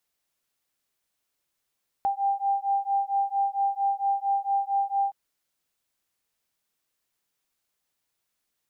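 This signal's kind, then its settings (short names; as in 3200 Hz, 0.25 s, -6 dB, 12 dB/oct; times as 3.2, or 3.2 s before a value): beating tones 791 Hz, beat 4.4 Hz, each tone -26 dBFS 3.07 s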